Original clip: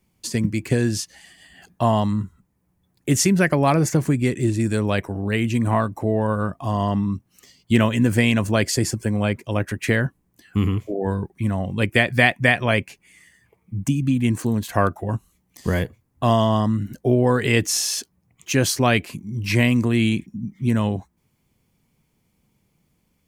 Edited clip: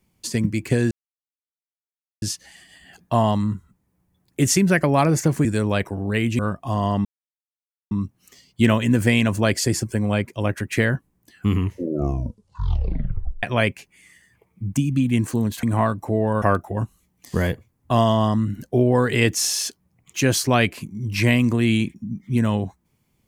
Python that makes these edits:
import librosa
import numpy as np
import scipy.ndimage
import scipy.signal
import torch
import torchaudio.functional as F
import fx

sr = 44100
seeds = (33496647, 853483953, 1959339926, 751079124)

y = fx.edit(x, sr, fx.insert_silence(at_s=0.91, length_s=1.31),
    fx.cut(start_s=4.14, length_s=0.49),
    fx.move(start_s=5.57, length_s=0.79, to_s=14.74),
    fx.insert_silence(at_s=7.02, length_s=0.86),
    fx.tape_stop(start_s=10.64, length_s=1.9), tone=tone)